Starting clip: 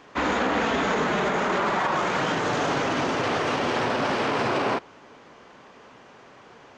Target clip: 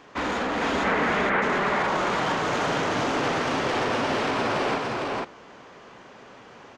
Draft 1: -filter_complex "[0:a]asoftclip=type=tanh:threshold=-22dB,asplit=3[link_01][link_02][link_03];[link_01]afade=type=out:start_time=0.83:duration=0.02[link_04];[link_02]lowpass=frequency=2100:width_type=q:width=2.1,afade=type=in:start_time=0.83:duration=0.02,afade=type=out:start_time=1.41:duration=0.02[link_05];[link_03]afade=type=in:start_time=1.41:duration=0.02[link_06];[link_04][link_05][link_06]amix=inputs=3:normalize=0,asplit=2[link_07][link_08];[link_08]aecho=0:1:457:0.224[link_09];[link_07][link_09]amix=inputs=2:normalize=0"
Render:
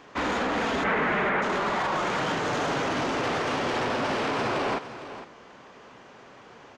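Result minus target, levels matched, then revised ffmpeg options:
echo-to-direct −11.5 dB
-filter_complex "[0:a]asoftclip=type=tanh:threshold=-22dB,asplit=3[link_01][link_02][link_03];[link_01]afade=type=out:start_time=0.83:duration=0.02[link_04];[link_02]lowpass=frequency=2100:width_type=q:width=2.1,afade=type=in:start_time=0.83:duration=0.02,afade=type=out:start_time=1.41:duration=0.02[link_05];[link_03]afade=type=in:start_time=1.41:duration=0.02[link_06];[link_04][link_05][link_06]amix=inputs=3:normalize=0,asplit=2[link_07][link_08];[link_08]aecho=0:1:457:0.841[link_09];[link_07][link_09]amix=inputs=2:normalize=0"

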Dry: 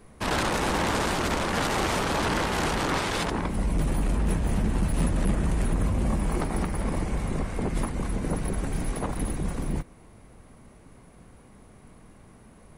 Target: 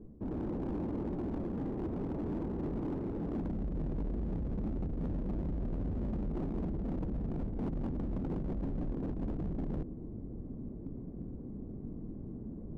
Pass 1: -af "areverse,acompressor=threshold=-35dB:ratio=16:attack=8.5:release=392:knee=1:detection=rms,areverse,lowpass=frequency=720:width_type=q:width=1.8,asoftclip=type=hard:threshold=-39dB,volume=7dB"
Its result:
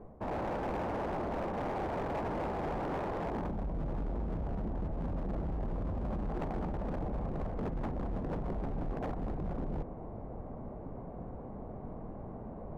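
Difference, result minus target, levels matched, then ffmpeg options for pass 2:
1,000 Hz band +12.0 dB
-af "areverse,acompressor=threshold=-35dB:ratio=16:attack=8.5:release=392:knee=1:detection=rms,areverse,lowpass=frequency=310:width_type=q:width=1.8,asoftclip=type=hard:threshold=-39dB,volume=7dB"

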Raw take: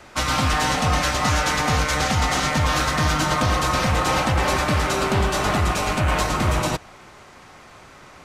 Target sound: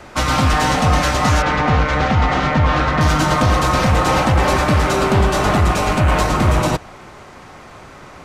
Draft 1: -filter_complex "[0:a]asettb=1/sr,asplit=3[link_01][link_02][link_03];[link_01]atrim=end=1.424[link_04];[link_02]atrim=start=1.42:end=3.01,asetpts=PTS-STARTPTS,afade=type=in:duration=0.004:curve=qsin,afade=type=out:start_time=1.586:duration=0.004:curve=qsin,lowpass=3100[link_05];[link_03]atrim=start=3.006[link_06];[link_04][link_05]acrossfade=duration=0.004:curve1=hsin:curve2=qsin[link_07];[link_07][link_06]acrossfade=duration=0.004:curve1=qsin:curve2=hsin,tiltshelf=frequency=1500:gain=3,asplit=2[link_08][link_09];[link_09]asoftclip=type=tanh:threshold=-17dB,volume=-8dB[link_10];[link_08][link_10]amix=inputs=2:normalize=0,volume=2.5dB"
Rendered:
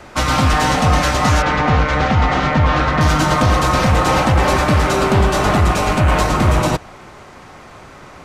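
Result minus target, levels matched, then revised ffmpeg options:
soft clipping: distortion −6 dB
-filter_complex "[0:a]asettb=1/sr,asplit=3[link_01][link_02][link_03];[link_01]atrim=end=1.424[link_04];[link_02]atrim=start=1.42:end=3.01,asetpts=PTS-STARTPTS,afade=type=in:duration=0.004:curve=qsin,afade=type=out:start_time=1.586:duration=0.004:curve=qsin,lowpass=3100[link_05];[link_03]atrim=start=3.006[link_06];[link_04][link_05]acrossfade=duration=0.004:curve1=hsin:curve2=qsin[link_07];[link_07][link_06]acrossfade=duration=0.004:curve1=qsin:curve2=hsin,tiltshelf=frequency=1500:gain=3,asplit=2[link_08][link_09];[link_09]asoftclip=type=tanh:threshold=-24dB,volume=-8dB[link_10];[link_08][link_10]amix=inputs=2:normalize=0,volume=2.5dB"

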